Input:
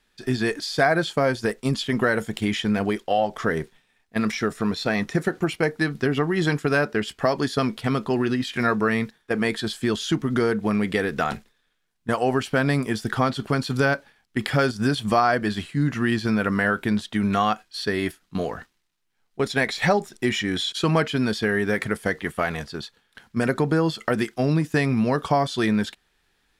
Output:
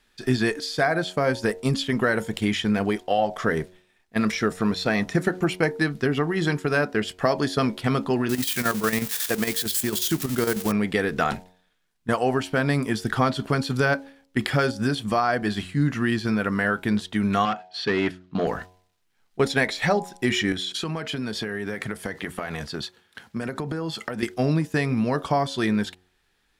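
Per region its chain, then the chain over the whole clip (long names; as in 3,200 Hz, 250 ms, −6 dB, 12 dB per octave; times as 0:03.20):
0:08.29–0:10.72: spike at every zero crossing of −16 dBFS + square-wave tremolo 11 Hz, depth 60%, duty 65%
0:17.45–0:18.47: hard clipping −21.5 dBFS + band-pass filter 110–3,900 Hz + one half of a high-frequency compander decoder only
0:20.52–0:24.23: high-pass filter 65 Hz 24 dB per octave + downward compressor 10 to 1, threshold −29 dBFS
whole clip: hum removal 91.41 Hz, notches 11; speech leveller within 4 dB 0.5 s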